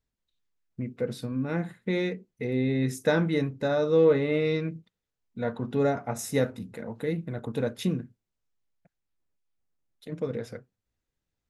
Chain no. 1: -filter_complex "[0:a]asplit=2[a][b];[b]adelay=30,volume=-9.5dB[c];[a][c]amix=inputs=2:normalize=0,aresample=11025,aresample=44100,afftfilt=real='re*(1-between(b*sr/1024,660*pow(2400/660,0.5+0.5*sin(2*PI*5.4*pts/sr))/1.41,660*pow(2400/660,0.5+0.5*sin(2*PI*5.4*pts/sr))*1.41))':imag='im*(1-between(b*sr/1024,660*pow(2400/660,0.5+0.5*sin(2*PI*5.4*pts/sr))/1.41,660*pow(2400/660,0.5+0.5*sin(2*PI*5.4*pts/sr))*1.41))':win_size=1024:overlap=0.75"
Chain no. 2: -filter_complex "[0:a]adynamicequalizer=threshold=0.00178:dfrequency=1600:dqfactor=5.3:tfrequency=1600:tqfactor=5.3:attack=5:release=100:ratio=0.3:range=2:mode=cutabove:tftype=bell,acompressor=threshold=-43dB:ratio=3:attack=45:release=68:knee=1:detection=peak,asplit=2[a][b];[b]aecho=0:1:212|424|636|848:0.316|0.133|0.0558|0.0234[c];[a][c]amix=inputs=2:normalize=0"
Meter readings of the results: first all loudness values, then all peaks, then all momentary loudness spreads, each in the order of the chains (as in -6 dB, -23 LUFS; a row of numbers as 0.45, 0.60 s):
-28.5, -39.0 LUFS; -11.0, -20.5 dBFS; 15, 11 LU